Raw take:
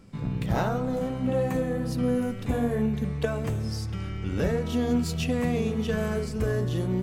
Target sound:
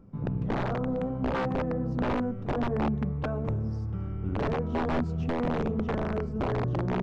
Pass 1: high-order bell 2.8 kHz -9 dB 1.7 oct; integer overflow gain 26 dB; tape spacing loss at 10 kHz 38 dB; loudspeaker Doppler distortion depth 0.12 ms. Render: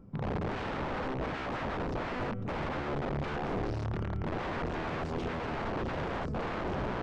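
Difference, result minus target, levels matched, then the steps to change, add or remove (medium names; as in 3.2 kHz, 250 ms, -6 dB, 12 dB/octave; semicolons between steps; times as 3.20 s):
integer overflow: distortion +20 dB
change: integer overflow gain 19.5 dB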